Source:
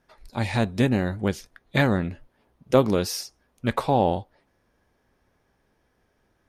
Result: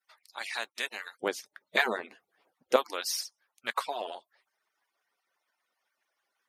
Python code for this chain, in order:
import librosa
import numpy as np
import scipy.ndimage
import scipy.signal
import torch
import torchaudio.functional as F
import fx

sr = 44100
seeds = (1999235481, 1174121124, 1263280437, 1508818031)

y = fx.hpss_only(x, sr, part='percussive')
y = fx.highpass(y, sr, hz=fx.steps((0.0, 1400.0), (1.19, 460.0), (2.76, 1100.0)), slope=12)